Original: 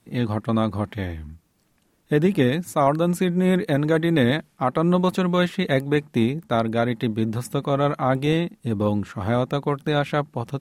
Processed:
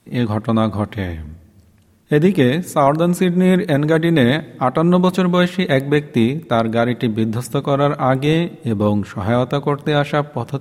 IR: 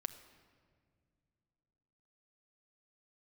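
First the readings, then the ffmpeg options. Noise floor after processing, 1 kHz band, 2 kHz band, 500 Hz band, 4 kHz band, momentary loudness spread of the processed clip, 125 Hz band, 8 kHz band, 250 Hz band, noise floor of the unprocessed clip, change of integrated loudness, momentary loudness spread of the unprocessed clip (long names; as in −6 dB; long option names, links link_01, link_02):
−50 dBFS, +5.0 dB, +5.5 dB, +5.5 dB, +5.0 dB, 6 LU, +5.5 dB, +5.0 dB, +5.5 dB, −65 dBFS, +5.5 dB, 6 LU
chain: -filter_complex "[0:a]asplit=2[link_01][link_02];[1:a]atrim=start_sample=2205,asetrate=52920,aresample=44100[link_03];[link_02][link_03]afir=irnorm=-1:irlink=0,volume=-5dB[link_04];[link_01][link_04]amix=inputs=2:normalize=0,volume=2.5dB"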